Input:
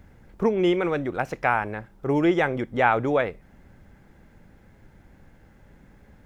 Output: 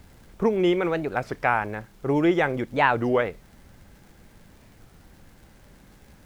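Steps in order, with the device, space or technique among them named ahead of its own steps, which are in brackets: warped LP (record warp 33 1/3 rpm, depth 250 cents; crackle; pink noise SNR 33 dB)

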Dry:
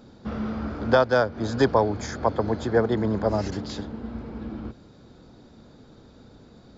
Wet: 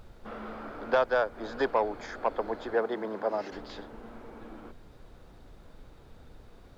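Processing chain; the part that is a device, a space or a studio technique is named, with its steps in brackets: aircraft cabin announcement (BPF 440–3200 Hz; soft clip -12 dBFS, distortion -19 dB; brown noise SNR 16 dB); 2.74–3.52 HPF 140 Hz 12 dB/oct; gain -3 dB

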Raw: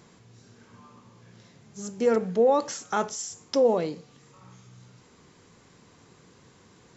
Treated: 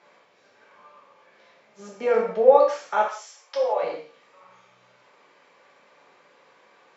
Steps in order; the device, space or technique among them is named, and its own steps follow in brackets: 1.79–2.52 low shelf 310 Hz +10 dB; non-linear reverb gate 0.2 s falling, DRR -3 dB; 3.08–3.83 HPF 690 Hz 12 dB/oct; tin-can telephone (BPF 660–2800 Hz; small resonant body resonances 550/2300 Hz, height 7 dB, ringing for 25 ms)

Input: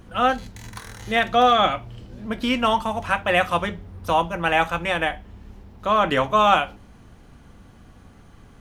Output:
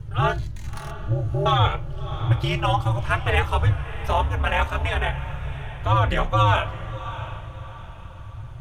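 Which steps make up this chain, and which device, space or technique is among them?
0.91–1.46 Chebyshev low-pass 540 Hz, order 4; alien voice (ring modulator 100 Hz; flange 0.56 Hz, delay 2.1 ms, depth 1.7 ms, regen -26%); resonant low shelf 170 Hz +12 dB, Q 3; diffused feedback echo 0.664 s, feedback 40%, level -13.5 dB; gain +3.5 dB

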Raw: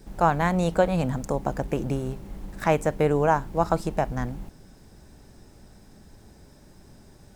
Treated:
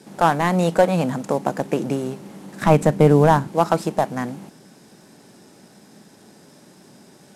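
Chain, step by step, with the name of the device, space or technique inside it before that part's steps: early wireless headset (HPF 160 Hz 24 dB/oct; CVSD 64 kbps); 2.61–3.48 tone controls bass +12 dB, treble -1 dB; gain +6 dB

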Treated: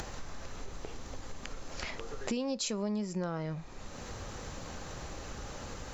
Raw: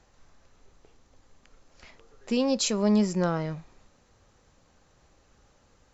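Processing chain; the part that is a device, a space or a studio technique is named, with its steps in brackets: upward and downward compression (upward compressor, threshold -29 dBFS; compressor 6:1, threshold -34 dBFS, peak gain reduction 15 dB); gain +2.5 dB

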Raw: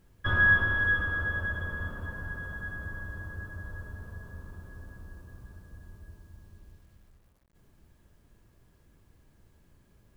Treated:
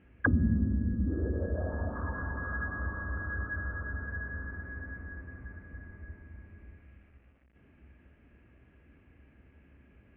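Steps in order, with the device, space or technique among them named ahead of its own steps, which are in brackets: envelope filter bass rig (envelope low-pass 210–2800 Hz down, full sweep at -24.5 dBFS; speaker cabinet 62–2300 Hz, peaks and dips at 65 Hz +10 dB, 100 Hz -4 dB, 150 Hz -4 dB, 260 Hz +7 dB, 990 Hz -7 dB); gain +2.5 dB

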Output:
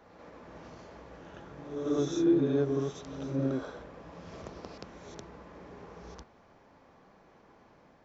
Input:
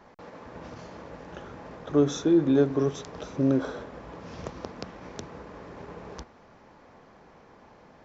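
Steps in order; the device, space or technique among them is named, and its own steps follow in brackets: reverse reverb (reverse; reverb RT60 0.85 s, pre-delay 48 ms, DRR 2 dB; reverse); gain -8 dB

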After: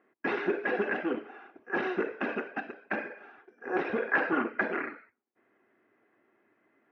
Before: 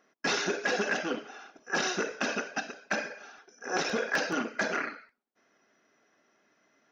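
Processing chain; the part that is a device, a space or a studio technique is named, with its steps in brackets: 4.08–4.61 dynamic EQ 1200 Hz, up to +7 dB, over -42 dBFS, Q 1; bass cabinet (speaker cabinet 62–2300 Hz, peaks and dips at 110 Hz +7 dB, 160 Hz -7 dB, 350 Hz +7 dB, 620 Hz -4 dB, 1400 Hz -4 dB)

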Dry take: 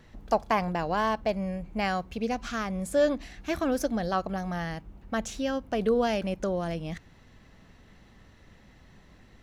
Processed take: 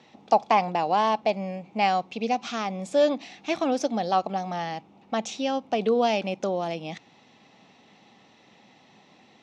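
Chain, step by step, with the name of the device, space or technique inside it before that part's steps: television speaker (speaker cabinet 160–7300 Hz, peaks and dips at 170 Hz -4 dB, 800 Hz +9 dB, 1600 Hz -8 dB, 2500 Hz +6 dB, 3600 Hz +6 dB, 5500 Hz +3 dB); gain +1.5 dB

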